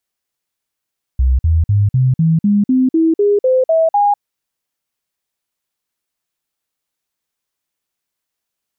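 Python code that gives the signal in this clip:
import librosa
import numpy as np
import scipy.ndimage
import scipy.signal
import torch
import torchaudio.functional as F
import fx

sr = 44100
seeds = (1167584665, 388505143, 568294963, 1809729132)

y = fx.stepped_sweep(sr, from_hz=64.4, direction='up', per_octave=3, tones=12, dwell_s=0.2, gap_s=0.05, level_db=-9.0)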